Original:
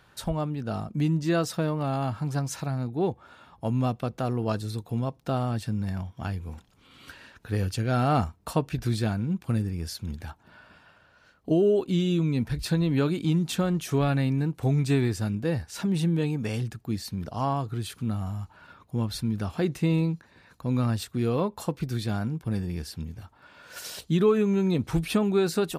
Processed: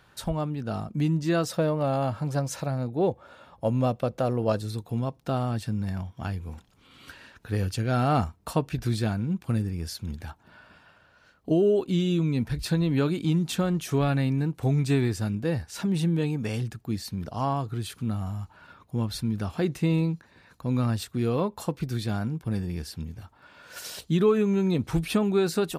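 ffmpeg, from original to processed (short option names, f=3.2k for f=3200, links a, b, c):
-filter_complex "[0:a]asettb=1/sr,asplit=3[a][b][c];[a]atrim=end=1.494[d];[b]atrim=start=1.49:end=4.62,asetpts=PTS-STARTPTS,afade=t=in:d=0.004:c=qsin,afade=t=out:st=3.126:d=0.004:c=qsin,equalizer=f=550:w=3.5:g=10[e];[c]atrim=start=4.616[f];[d][e]acrossfade=d=0.004:c1=hsin:c2=qsin[g];[g][f]acrossfade=d=0.004:c1=qsin:c2=hsin"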